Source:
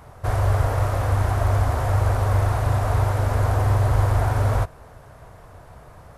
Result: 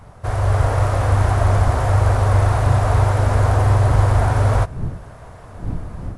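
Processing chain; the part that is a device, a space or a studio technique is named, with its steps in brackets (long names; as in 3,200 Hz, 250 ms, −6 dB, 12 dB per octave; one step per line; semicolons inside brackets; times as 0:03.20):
smartphone video outdoors (wind on the microphone 110 Hz −36 dBFS; automatic gain control gain up to 5.5 dB; AAC 96 kbit/s 24,000 Hz)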